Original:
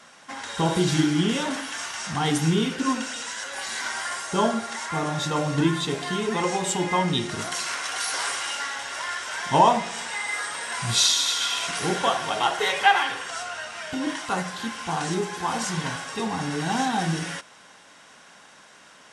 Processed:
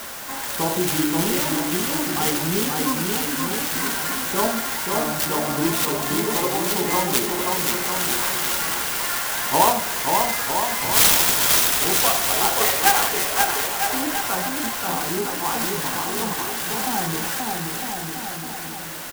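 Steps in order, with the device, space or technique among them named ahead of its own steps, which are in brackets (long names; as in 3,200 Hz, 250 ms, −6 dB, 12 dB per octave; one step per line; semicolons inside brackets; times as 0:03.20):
high-pass filter 220 Hz 12 dB per octave
0:16.33–0:16.87: Bessel high-pass filter 1,600 Hz, order 2
parametric band 3,700 Hz +7.5 dB 1 octave
bouncing-ball delay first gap 530 ms, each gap 0.8×, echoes 5
early CD player with a faulty converter (converter with a step at zero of −28 dBFS; converter with an unsteady clock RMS 0.084 ms)
level −1 dB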